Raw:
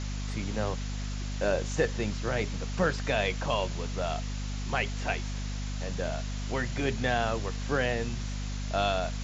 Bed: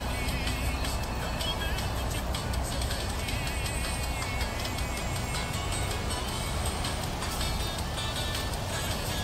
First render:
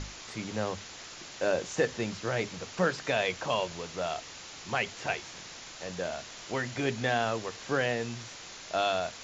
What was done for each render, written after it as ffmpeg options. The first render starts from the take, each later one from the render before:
-af "bandreject=f=50:t=h:w=6,bandreject=f=100:t=h:w=6,bandreject=f=150:t=h:w=6,bandreject=f=200:t=h:w=6,bandreject=f=250:t=h:w=6"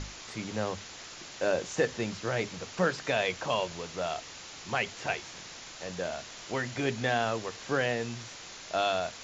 -af anull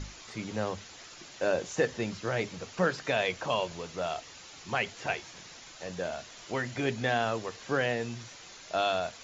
-af "afftdn=nr=6:nf=-46"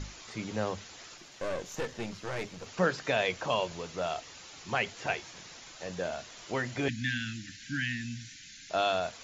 -filter_complex "[0:a]asettb=1/sr,asplit=3[a][b][c];[a]atrim=end=1.174[d];[b]atrim=start=1.17:end=2.66,asetpts=PTS-STARTPTS,afade=t=in:d=0.004:c=qsin,afade=t=out:st=1.486:d=0.004:c=qsin,aeval=exprs='(tanh(31.6*val(0)+0.65)-tanh(0.65))/31.6':c=same[e];[c]atrim=start=2.656[f];[d][e]acrossfade=d=0.004:c1=hsin:c2=qsin[g];[g][f]acrossfade=d=0.004:c1=qsin:c2=hsin,asettb=1/sr,asplit=3[h][i][j];[h]atrim=end=6.884[k];[i]atrim=start=6.88:end=8.7,asetpts=PTS-STARTPTS,afade=t=in:d=0.004:c=qsin,afade=t=out:st=1.816:d=0.004:c=qsin,asuperstop=centerf=680:order=20:qfactor=0.56[l];[j]atrim=start=8.696[m];[k][l]acrossfade=d=0.004:c1=hsin:c2=qsin[n];[n][m]acrossfade=d=0.004:c1=qsin:c2=hsin"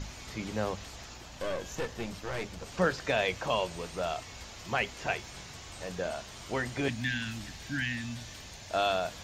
-filter_complex "[1:a]volume=-17.5dB[a];[0:a][a]amix=inputs=2:normalize=0"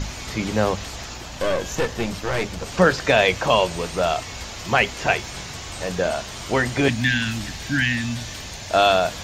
-af "volume=12dB,alimiter=limit=-3dB:level=0:latency=1"

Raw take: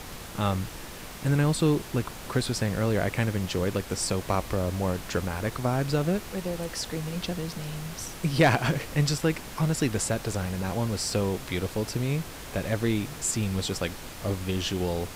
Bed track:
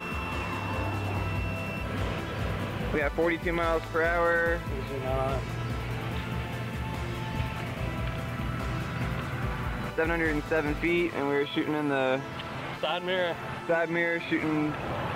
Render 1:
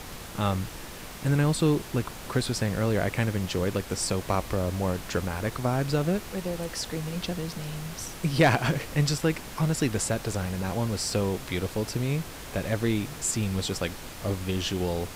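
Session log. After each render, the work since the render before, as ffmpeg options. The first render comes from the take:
-af anull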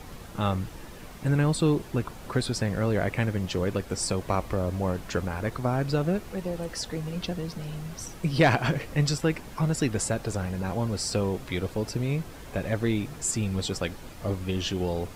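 -af "afftdn=nr=8:nf=-41"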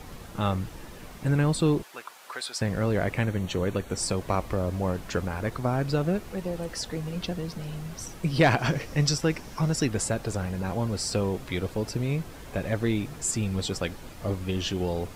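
-filter_complex "[0:a]asettb=1/sr,asplit=3[a][b][c];[a]atrim=end=1.834[d];[b]atrim=start=1.83:end=2.61,asetpts=PTS-STARTPTS,afade=t=in:d=0.004:c=qsin,afade=t=out:st=0.776:d=0.004:c=qsin,highpass=940[e];[c]atrim=start=2.606[f];[d][e]acrossfade=d=0.004:c1=hsin:c2=qsin[g];[g][f]acrossfade=d=0.004:c1=qsin:c2=hsin,asettb=1/sr,asplit=3[h][i][j];[h]atrim=end=3.214[k];[i]atrim=start=3.21:end=3.97,asetpts=PTS-STARTPTS,afade=t=in:d=0.004:c=qsin,afade=t=out:st=0.756:d=0.004:c=qsin,asuperstop=centerf=5000:order=12:qfactor=6.3[l];[j]atrim=start=3.966[m];[k][l]acrossfade=d=0.004:c1=hsin:c2=qsin[n];[n][m]acrossfade=d=0.004:c1=qsin:c2=hsin,asettb=1/sr,asplit=3[o][p][q];[o]atrim=end=8.594[r];[p]atrim=start=8.59:end=9.85,asetpts=PTS-STARTPTS,afade=t=in:d=0.004:c=qsin,afade=t=out:st=1.256:d=0.004:c=qsin,equalizer=f=5.6k:t=o:w=0.35:g=8[s];[q]atrim=start=9.846[t];[r][s]acrossfade=d=0.004:c1=hsin:c2=qsin[u];[u][t]acrossfade=d=0.004:c1=qsin:c2=hsin"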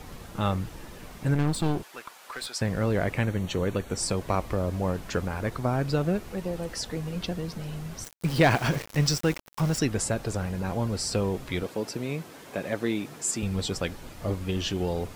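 -filter_complex "[0:a]asettb=1/sr,asplit=3[a][b][c];[a]atrim=end=1.344[d];[b]atrim=start=1.34:end=2.5,asetpts=PTS-STARTPTS,afade=t=in:d=0.004:c=qsin,afade=t=out:st=1.156:d=0.004:c=qsin,aeval=exprs='clip(val(0),-1,0.0211)':c=same[e];[c]atrim=start=2.496[f];[d][e]acrossfade=d=0.004:c1=hsin:c2=qsin[g];[g][f]acrossfade=d=0.004:c1=qsin:c2=hsin,asettb=1/sr,asplit=3[h][i][j];[h]atrim=end=8.044[k];[i]atrim=start=8.04:end=9.79,asetpts=PTS-STARTPTS,afade=t=in:d=0.004:c=qsin,afade=t=out:st=1.746:d=0.004:c=qsin,aeval=exprs='val(0)*gte(abs(val(0)),0.0224)':c=same[l];[j]atrim=start=9.786[m];[k][l]acrossfade=d=0.004:c1=hsin:c2=qsin[n];[n][m]acrossfade=d=0.004:c1=qsin:c2=hsin,asettb=1/sr,asplit=3[o][p][q];[o]atrim=end=11.634[r];[p]atrim=start=11.63:end=13.43,asetpts=PTS-STARTPTS,afade=t=in:d=0.004:c=qsin,afade=t=out:st=1.796:d=0.004:c=qsin,highpass=200[s];[q]atrim=start=13.426[t];[r][s]acrossfade=d=0.004:c1=hsin:c2=qsin[u];[u][t]acrossfade=d=0.004:c1=qsin:c2=hsin"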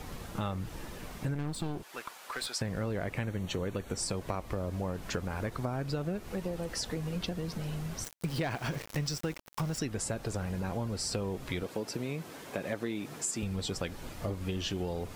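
-af "acompressor=threshold=-31dB:ratio=6"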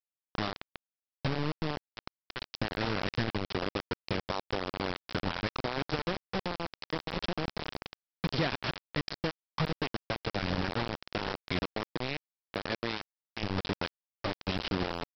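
-af "aphaser=in_gain=1:out_gain=1:delay=3.8:decay=0.21:speed=0.95:type=triangular,aresample=11025,acrusher=bits=4:mix=0:aa=0.000001,aresample=44100"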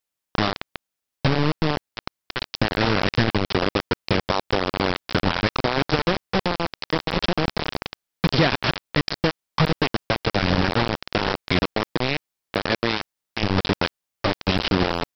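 -af "volume=11.5dB"

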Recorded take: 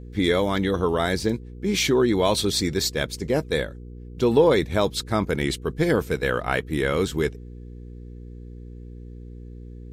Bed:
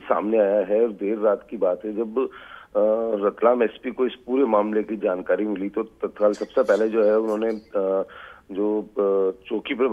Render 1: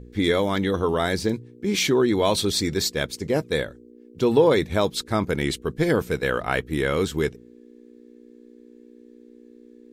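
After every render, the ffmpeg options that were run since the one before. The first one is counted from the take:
-af "bandreject=f=60:t=h:w=4,bandreject=f=120:t=h:w=4,bandreject=f=180:t=h:w=4"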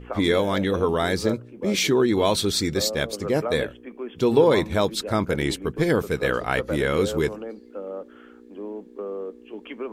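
-filter_complex "[1:a]volume=-11.5dB[a];[0:a][a]amix=inputs=2:normalize=0"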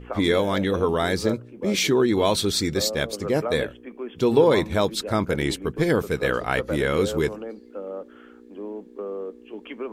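-af anull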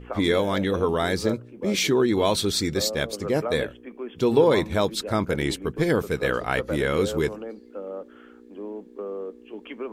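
-af "volume=-1dB"

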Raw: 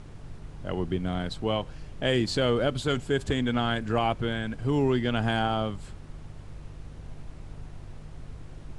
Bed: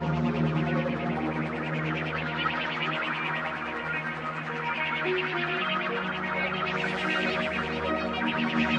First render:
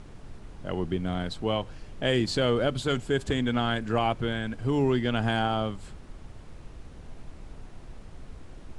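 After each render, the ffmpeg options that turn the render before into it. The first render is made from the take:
-af "bandreject=f=50:t=h:w=4,bandreject=f=100:t=h:w=4,bandreject=f=150:t=h:w=4"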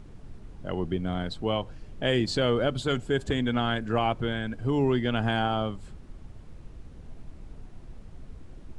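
-af "afftdn=nr=6:nf=-46"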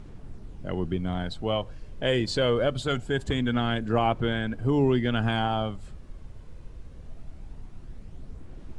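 -af "aphaser=in_gain=1:out_gain=1:delay=2:decay=0.26:speed=0.23:type=sinusoidal"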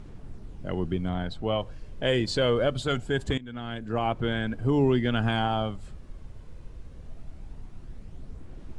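-filter_complex "[0:a]asettb=1/sr,asplit=3[a][b][c];[a]atrim=end=1.094[d];[b]atrim=start=1.09:end=1.6,asetpts=PTS-STARTPTS,afade=t=in:d=0.004:c=qsin,afade=t=out:st=0.506:d=0.004:c=qsin,highshelf=f=4.7k:g=-7.5[e];[c]atrim=start=1.596[f];[d][e]acrossfade=d=0.004:c1=hsin:c2=qsin[g];[g][f]acrossfade=d=0.004:c1=qsin:c2=hsin,asplit=2[h][i];[h]atrim=end=3.38,asetpts=PTS-STARTPTS,afade=t=out:st=3.376:d=0.004:c=hsin:silence=0.105925[j];[i]atrim=start=3.38,asetpts=PTS-STARTPTS,afade=t=in:d=1.04:silence=0.105925[k];[j][k]concat=n=2:v=0:a=1"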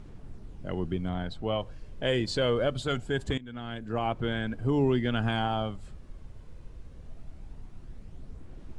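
-af "volume=-2.5dB"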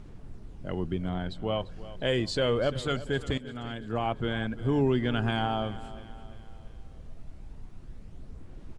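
-af "aecho=1:1:344|688|1032|1376:0.158|0.0761|0.0365|0.0175"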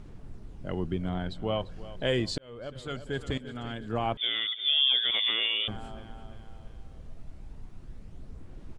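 -filter_complex "[0:a]asettb=1/sr,asplit=3[a][b][c];[a]atrim=end=4.174[d];[b]atrim=start=4.17:end=5.68,asetpts=PTS-STARTPTS,afade=t=in:d=0.004:c=qsin,afade=t=out:st=1.506:d=0.004:c=qsin,lowpass=f=3.1k:t=q:w=0.5098,lowpass=f=3.1k:t=q:w=0.6013,lowpass=f=3.1k:t=q:w=0.9,lowpass=f=3.1k:t=q:w=2.563,afreqshift=-3600[e];[c]atrim=start=5.676[f];[d][e]acrossfade=d=0.004:c1=hsin:c2=qsin[g];[g][f]acrossfade=d=0.004:c1=qsin:c2=hsin,asplit=2[h][i];[h]atrim=end=2.38,asetpts=PTS-STARTPTS,afade=t=out:st=2.376:d=0.004:c=hsin[j];[i]atrim=start=2.38,asetpts=PTS-STARTPTS,afade=t=in:d=1.17[k];[j][k]concat=n=2:v=0:a=1"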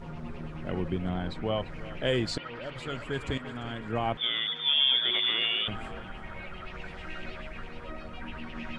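-filter_complex "[1:a]volume=-14.5dB[a];[0:a][a]amix=inputs=2:normalize=0"

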